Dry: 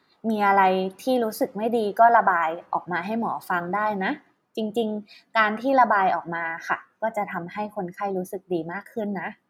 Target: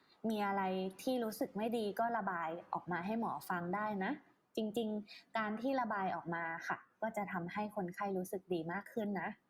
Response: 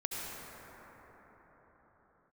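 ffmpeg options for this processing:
-filter_complex "[0:a]acrossover=split=270|1600[a][b][c];[a]acompressor=threshold=-36dB:ratio=4[d];[b]acompressor=threshold=-34dB:ratio=4[e];[c]acompressor=threshold=-44dB:ratio=4[f];[d][e][f]amix=inputs=3:normalize=0,volume=-5.5dB" -ar 48000 -c:a libopus -b:a 64k

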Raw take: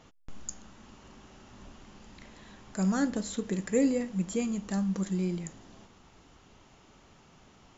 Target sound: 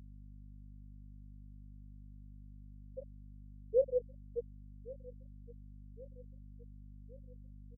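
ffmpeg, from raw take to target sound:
-filter_complex "[0:a]asplit=3[a][b][c];[a]bandpass=f=530:t=q:w=8,volume=0dB[d];[b]bandpass=f=1.84k:t=q:w=8,volume=-6dB[e];[c]bandpass=f=2.48k:t=q:w=8,volume=-9dB[f];[d][e][f]amix=inputs=3:normalize=0,afftfilt=real='re*gte(hypot(re,im),0.126)':imag='im*gte(hypot(re,im),0.126)':win_size=1024:overlap=0.75,asplit=2[g][h];[h]adelay=1117,lowpass=f=2k:p=1,volume=-19.5dB,asplit=2[i][j];[j]adelay=1117,lowpass=f=2k:p=1,volume=0.53,asplit=2[k][l];[l]adelay=1117,lowpass=f=2k:p=1,volume=0.53,asplit=2[m][n];[n]adelay=1117,lowpass=f=2k:p=1,volume=0.53[o];[g][i][k][m][o]amix=inputs=5:normalize=0,aeval=exprs='val(0)+0.002*(sin(2*PI*50*n/s)+sin(2*PI*2*50*n/s)/2+sin(2*PI*3*50*n/s)/3+sin(2*PI*4*50*n/s)/4+sin(2*PI*5*50*n/s)/5)':c=same,volume=3dB"

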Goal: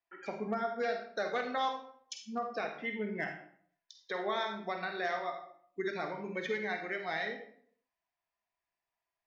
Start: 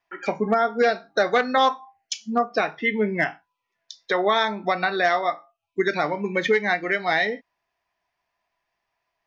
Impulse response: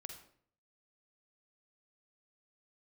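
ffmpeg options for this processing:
-filter_complex "[1:a]atrim=start_sample=2205[a];[0:a][a]afir=irnorm=-1:irlink=0,volume=-9dB"

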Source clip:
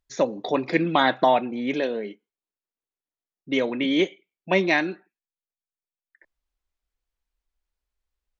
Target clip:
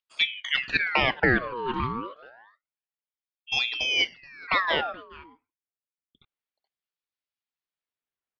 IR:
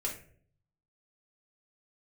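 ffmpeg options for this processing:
-af "highpass=150,lowpass=2.2k,aecho=1:1:427:0.0891,aeval=exprs='val(0)*sin(2*PI*1800*n/s+1800*0.65/0.28*sin(2*PI*0.28*n/s))':c=same"

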